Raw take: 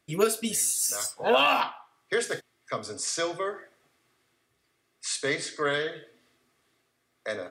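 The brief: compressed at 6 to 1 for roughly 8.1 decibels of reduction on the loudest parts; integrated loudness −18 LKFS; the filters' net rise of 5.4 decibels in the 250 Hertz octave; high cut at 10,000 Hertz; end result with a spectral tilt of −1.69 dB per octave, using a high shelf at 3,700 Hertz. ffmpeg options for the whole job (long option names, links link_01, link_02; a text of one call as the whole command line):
ffmpeg -i in.wav -af "lowpass=10000,equalizer=frequency=250:width_type=o:gain=6.5,highshelf=frequency=3700:gain=8.5,acompressor=threshold=-24dB:ratio=6,volume=10.5dB" out.wav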